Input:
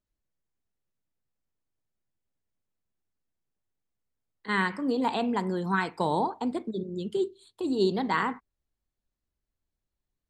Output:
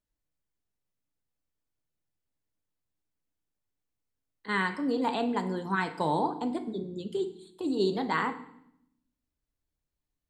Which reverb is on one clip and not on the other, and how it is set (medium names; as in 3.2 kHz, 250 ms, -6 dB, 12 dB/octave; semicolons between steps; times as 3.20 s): FDN reverb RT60 0.72 s, low-frequency decay 1.55×, high-frequency decay 0.95×, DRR 8.5 dB; trim -2 dB